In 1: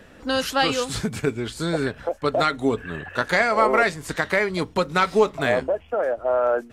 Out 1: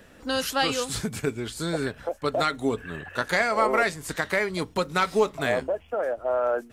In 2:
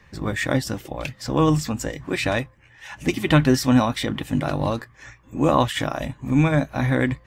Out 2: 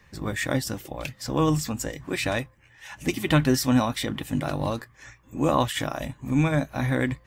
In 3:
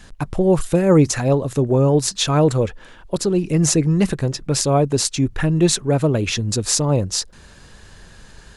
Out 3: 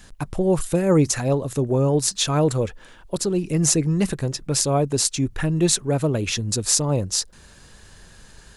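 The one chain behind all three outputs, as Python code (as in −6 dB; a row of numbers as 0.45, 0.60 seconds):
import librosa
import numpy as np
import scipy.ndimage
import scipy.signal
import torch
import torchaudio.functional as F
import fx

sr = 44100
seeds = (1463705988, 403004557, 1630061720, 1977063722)

y = fx.high_shelf(x, sr, hz=7500.0, db=9.0)
y = y * 10.0 ** (-4.0 / 20.0)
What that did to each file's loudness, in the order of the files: −3.5, −3.5, −3.0 LU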